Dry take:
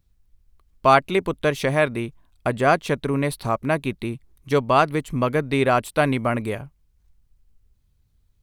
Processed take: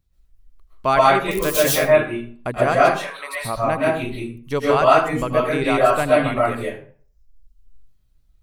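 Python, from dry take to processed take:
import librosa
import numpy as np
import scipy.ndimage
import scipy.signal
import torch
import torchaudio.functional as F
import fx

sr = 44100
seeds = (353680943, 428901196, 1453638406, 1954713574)

y = fx.crossing_spikes(x, sr, level_db=-14.5, at=(1.31, 1.72))
y = fx.dereverb_blind(y, sr, rt60_s=0.98)
y = fx.highpass(y, sr, hz=750.0, slope=24, at=(2.81, 3.34))
y = y + 10.0 ** (-17.0 / 20.0) * np.pad(y, (int(80 * sr / 1000.0), 0))[:len(y)]
y = fx.rev_freeverb(y, sr, rt60_s=0.47, hf_ratio=0.65, predelay_ms=90, drr_db=-6.5)
y = y * 10.0 ** (-3.5 / 20.0)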